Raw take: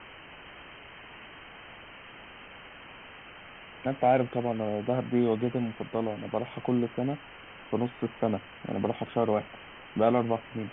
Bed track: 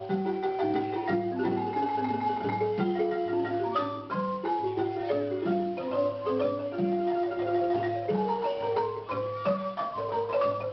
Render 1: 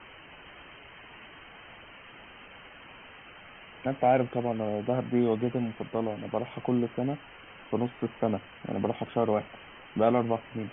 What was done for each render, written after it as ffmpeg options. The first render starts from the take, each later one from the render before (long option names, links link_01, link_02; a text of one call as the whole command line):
ffmpeg -i in.wav -af "afftdn=noise_reduction=6:noise_floor=-49" out.wav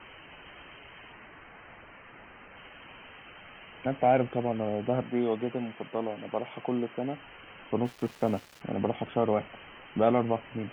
ffmpeg -i in.wav -filter_complex "[0:a]asettb=1/sr,asplit=3[link_01][link_02][link_03];[link_01]atrim=end=1.124[link_04];[link_02]atrim=start=1.12:end=2.57,asetpts=PTS-STARTPTS,afade=type=in:duration=0.004:curve=qsin,afade=type=out:start_time=1.446:duration=0.004:curve=qsin,lowpass=frequency=2400:width=0.5412,lowpass=frequency=2400:width=1.3066[link_05];[link_03]atrim=start=2.566[link_06];[link_04][link_05]acrossfade=duration=0.004:curve1=hsin:curve2=qsin[link_07];[link_07][link_06]acrossfade=duration=0.004:curve1=qsin:curve2=hsin,asettb=1/sr,asplit=3[link_08][link_09][link_10];[link_08]atrim=end=5.024[link_11];[link_09]atrim=start=5.02:end=7.17,asetpts=PTS-STARTPTS,afade=type=in:duration=0.004:curve=qsin,afade=type=out:start_time=2.146:duration=0.004:curve=qsin,highpass=frequency=290:poles=1[link_12];[link_10]atrim=start=7.166[link_13];[link_11][link_12]acrossfade=duration=0.004:curve1=hsin:curve2=qsin[link_14];[link_14][link_13]acrossfade=duration=0.004:curve1=qsin:curve2=hsin,asplit=3[link_15][link_16][link_17];[link_15]afade=type=out:start_time=7.84:duration=0.02[link_18];[link_16]aeval=exprs='val(0)*gte(abs(val(0)),0.00631)':channel_layout=same,afade=type=in:start_time=7.84:duration=0.02,afade=type=out:start_time=8.6:duration=0.02[link_19];[link_17]afade=type=in:start_time=8.6:duration=0.02[link_20];[link_18][link_19][link_20]amix=inputs=3:normalize=0" out.wav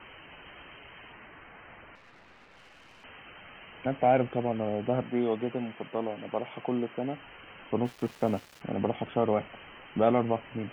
ffmpeg -i in.wav -filter_complex "[0:a]asettb=1/sr,asplit=3[link_01][link_02][link_03];[link_01]atrim=end=1.954[link_04];[link_02]atrim=start=1.95:end=3.04,asetpts=PTS-STARTPTS,afade=type=in:duration=0.004:curve=qsin,afade=type=out:start_time=1.086:duration=0.004:curve=qsin,aeval=exprs='(tanh(355*val(0)+0.75)-tanh(0.75))/355':channel_layout=same[link_05];[link_03]atrim=start=3.036[link_06];[link_04][link_05]acrossfade=duration=0.004:curve1=hsin:curve2=qsin[link_07];[link_07][link_06]acrossfade=duration=0.004:curve1=qsin:curve2=hsin" out.wav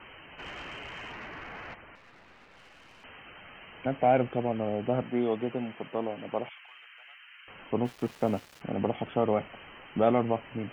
ffmpeg -i in.wav -filter_complex "[0:a]asplit=3[link_01][link_02][link_03];[link_01]afade=type=out:start_time=0.38:duration=0.02[link_04];[link_02]aeval=exprs='0.0158*sin(PI/2*1.78*val(0)/0.0158)':channel_layout=same,afade=type=in:start_time=0.38:duration=0.02,afade=type=out:start_time=1.73:duration=0.02[link_05];[link_03]afade=type=in:start_time=1.73:duration=0.02[link_06];[link_04][link_05][link_06]amix=inputs=3:normalize=0,asettb=1/sr,asplit=3[link_07][link_08][link_09];[link_07]atrim=end=6.494[link_10];[link_08]atrim=start=6.49:end=7.48,asetpts=PTS-STARTPTS,afade=type=in:duration=0.004:curve=qsin,afade=type=out:start_time=0.986:duration=0.004:curve=qsin,highpass=frequency=1500:width=0.5412,highpass=frequency=1500:width=1.3066[link_11];[link_09]atrim=start=7.476[link_12];[link_10][link_11]acrossfade=duration=0.004:curve1=hsin:curve2=qsin[link_13];[link_13][link_12]acrossfade=duration=0.004:curve1=qsin:curve2=hsin" out.wav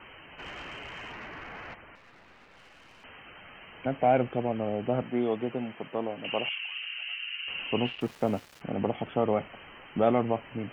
ffmpeg -i in.wav -filter_complex "[0:a]asettb=1/sr,asplit=3[link_01][link_02][link_03];[link_01]atrim=end=6.244[link_04];[link_02]atrim=start=6.24:end=8.01,asetpts=PTS-STARTPTS,afade=type=in:duration=0.004:curve=qsin,afade=type=out:start_time=1.766:duration=0.004:curve=qsin,lowpass=frequency=2800:width_type=q:width=14[link_05];[link_03]atrim=start=8.006[link_06];[link_04][link_05]acrossfade=duration=0.004:curve1=hsin:curve2=qsin[link_07];[link_07][link_06]acrossfade=duration=0.004:curve1=qsin:curve2=hsin" out.wav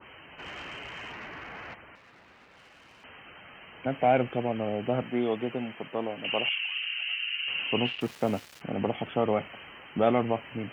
ffmpeg -i in.wav -af "highpass=52,adynamicequalizer=threshold=0.00794:dfrequency=1600:dqfactor=0.7:tfrequency=1600:tqfactor=0.7:attack=5:release=100:ratio=0.375:range=2.5:mode=boostabove:tftype=highshelf" out.wav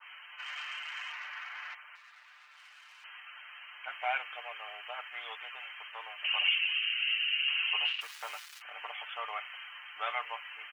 ffmpeg -i in.wav -af "highpass=frequency=1100:width=0.5412,highpass=frequency=1100:width=1.3066,aecho=1:1:6.7:0.6" out.wav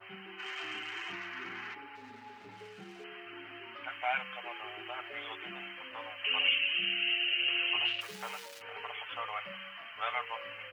ffmpeg -i in.wav -i bed.wav -filter_complex "[1:a]volume=-22.5dB[link_01];[0:a][link_01]amix=inputs=2:normalize=0" out.wav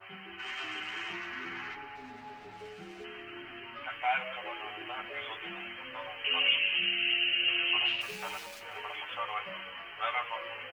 ffmpeg -i in.wav -filter_complex "[0:a]asplit=2[link_01][link_02];[link_02]adelay=12,volume=-3dB[link_03];[link_01][link_03]amix=inputs=2:normalize=0,asplit=7[link_04][link_05][link_06][link_07][link_08][link_09][link_10];[link_05]adelay=187,afreqshift=-110,volume=-15dB[link_11];[link_06]adelay=374,afreqshift=-220,volume=-19.9dB[link_12];[link_07]adelay=561,afreqshift=-330,volume=-24.8dB[link_13];[link_08]adelay=748,afreqshift=-440,volume=-29.6dB[link_14];[link_09]adelay=935,afreqshift=-550,volume=-34.5dB[link_15];[link_10]adelay=1122,afreqshift=-660,volume=-39.4dB[link_16];[link_04][link_11][link_12][link_13][link_14][link_15][link_16]amix=inputs=7:normalize=0" out.wav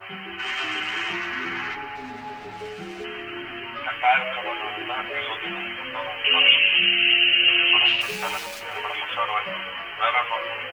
ffmpeg -i in.wav -af "volume=11dB" out.wav